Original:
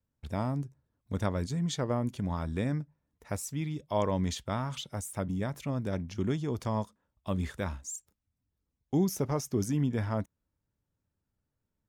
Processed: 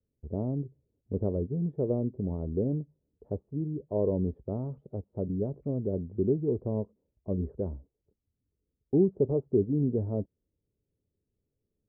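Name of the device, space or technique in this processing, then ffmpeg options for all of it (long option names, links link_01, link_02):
under water: -af "lowpass=frequency=580:width=0.5412,lowpass=frequency=580:width=1.3066,equalizer=frequency=410:width_type=o:width=0.56:gain=10"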